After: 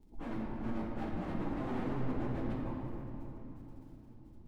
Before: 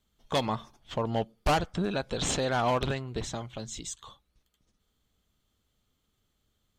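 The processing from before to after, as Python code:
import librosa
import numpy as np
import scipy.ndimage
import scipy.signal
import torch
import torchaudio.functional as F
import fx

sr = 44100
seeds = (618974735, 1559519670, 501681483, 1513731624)

p1 = fx.low_shelf(x, sr, hz=66.0, db=10.0)
p2 = fx.over_compress(p1, sr, threshold_db=-35.0, ratio=-0.5)
p3 = p1 + F.gain(torch.from_numpy(p2), 2.0).numpy()
p4 = fx.fold_sine(p3, sr, drive_db=12, ceiling_db=-12.0)
p5 = fx.formant_cascade(p4, sr, vowel='u')
p6 = fx.dmg_crackle(p5, sr, seeds[0], per_s=26.0, level_db=-50.0)
p7 = np.clip(10.0 ** (34.5 / 20.0) * p6, -1.0, 1.0) / 10.0 ** (34.5 / 20.0)
p8 = p7 + fx.echo_diffused(p7, sr, ms=465, feedback_pct=60, wet_db=-16.0, dry=0)
p9 = fx.stretch_vocoder_free(p8, sr, factor=0.66)
p10 = fx.room_shoebox(p9, sr, seeds[1], volume_m3=180.0, walls='hard', distance_m=0.64)
y = F.gain(torch.from_numpy(p10), -3.0).numpy()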